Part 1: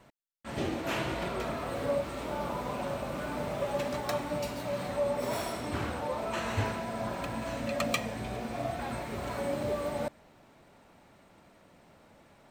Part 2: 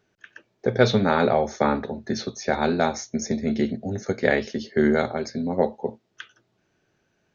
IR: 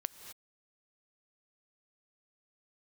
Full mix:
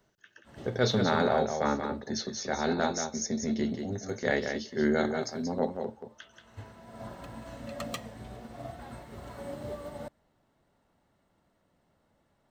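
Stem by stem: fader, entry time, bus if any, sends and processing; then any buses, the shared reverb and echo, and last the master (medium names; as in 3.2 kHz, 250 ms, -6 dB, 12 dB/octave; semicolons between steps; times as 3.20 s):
-3.5 dB, 0.00 s, no send, no echo send, bass shelf 140 Hz +6 dB; upward expansion 1.5:1, over -43 dBFS; auto duck -20 dB, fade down 1.80 s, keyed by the second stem
-5.5 dB, 0.00 s, no send, echo send -6.5 dB, treble shelf 5.2 kHz +9.5 dB; transient shaper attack -6 dB, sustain -2 dB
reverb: none
echo: delay 181 ms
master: band-stop 2.4 kHz, Q 7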